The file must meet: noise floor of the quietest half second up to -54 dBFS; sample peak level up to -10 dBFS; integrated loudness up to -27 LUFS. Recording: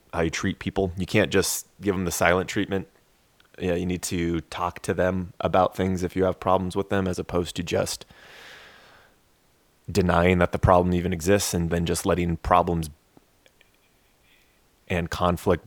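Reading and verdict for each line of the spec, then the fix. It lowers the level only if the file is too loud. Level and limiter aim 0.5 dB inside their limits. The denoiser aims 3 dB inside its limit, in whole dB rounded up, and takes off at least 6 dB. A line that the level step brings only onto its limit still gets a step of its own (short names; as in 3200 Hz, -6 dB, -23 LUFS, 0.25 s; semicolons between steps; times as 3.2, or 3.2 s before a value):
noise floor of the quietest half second -62 dBFS: OK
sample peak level -2.0 dBFS: fail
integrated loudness -24.5 LUFS: fail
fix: gain -3 dB; limiter -10.5 dBFS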